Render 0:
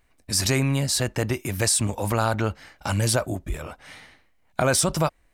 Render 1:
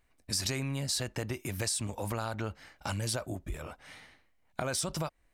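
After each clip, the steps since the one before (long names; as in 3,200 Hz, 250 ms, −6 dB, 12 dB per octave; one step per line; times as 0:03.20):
downward compressor 4 to 1, threshold −25 dBFS, peak gain reduction 7.5 dB
dynamic equaliser 4,200 Hz, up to +4 dB, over −39 dBFS, Q 0.81
level −6.5 dB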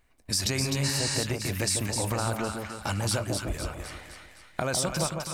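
echo with a time of its own for lows and highs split 1,100 Hz, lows 151 ms, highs 256 ms, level −4.5 dB
healed spectral selection 0:00.86–0:01.13, 810–10,000 Hz after
level +4.5 dB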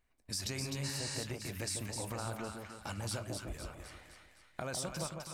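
flanger 1.4 Hz, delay 3.8 ms, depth 5.6 ms, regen −86%
level −6.5 dB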